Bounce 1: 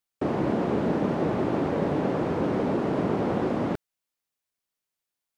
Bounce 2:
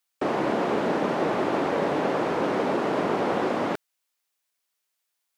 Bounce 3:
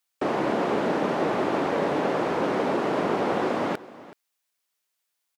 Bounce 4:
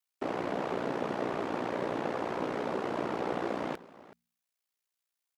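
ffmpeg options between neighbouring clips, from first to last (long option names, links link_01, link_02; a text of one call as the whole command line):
ffmpeg -i in.wav -af "highpass=frequency=760:poles=1,volume=7.5dB" out.wav
ffmpeg -i in.wav -af "aecho=1:1:376:0.119" out.wav
ffmpeg -i in.wav -af "bandreject=frequency=100.9:width_type=h:width=4,bandreject=frequency=201.8:width_type=h:width=4,aeval=exprs='val(0)*sin(2*PI*30*n/s)':channel_layout=same,volume=-5.5dB" out.wav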